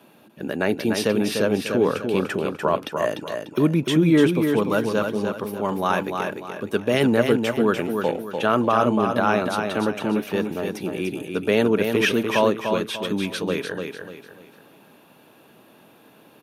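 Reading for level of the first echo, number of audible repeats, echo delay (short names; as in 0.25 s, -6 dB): -5.5 dB, 4, 0.296 s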